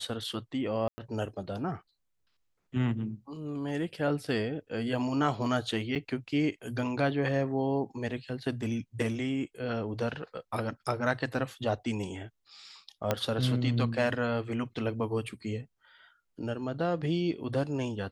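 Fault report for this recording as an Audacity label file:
0.880000	0.980000	dropout 100 ms
5.950000	5.960000	dropout 7.6 ms
13.110000	13.110000	pop -12 dBFS

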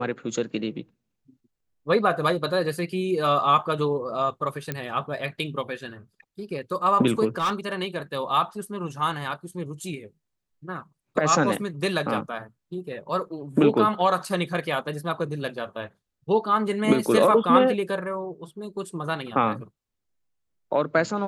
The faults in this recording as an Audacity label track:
4.720000	4.720000	pop -14 dBFS
7.380000	7.740000	clipped -20.5 dBFS

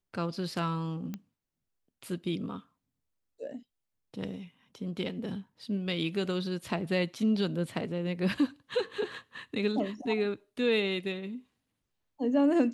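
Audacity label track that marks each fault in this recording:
1.140000	1.140000	pop -24 dBFS

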